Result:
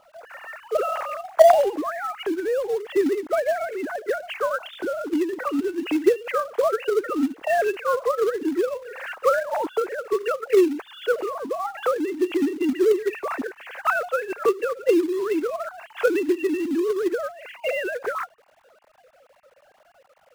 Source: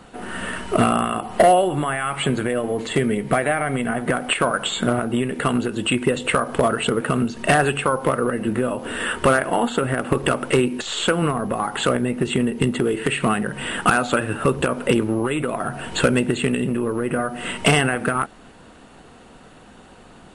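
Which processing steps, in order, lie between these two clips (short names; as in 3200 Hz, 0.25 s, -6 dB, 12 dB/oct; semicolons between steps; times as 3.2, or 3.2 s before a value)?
sine-wave speech; LPF 1100 Hz 6 dB/oct; in parallel at -5.5 dB: companded quantiser 4-bit; on the sum: gain -5 dB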